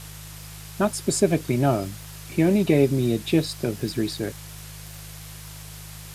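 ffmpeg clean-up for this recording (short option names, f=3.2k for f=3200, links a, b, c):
-af "adeclick=t=4,bandreject=f=51.9:t=h:w=4,bandreject=f=103.8:t=h:w=4,bandreject=f=155.7:t=h:w=4,afwtdn=0.0079"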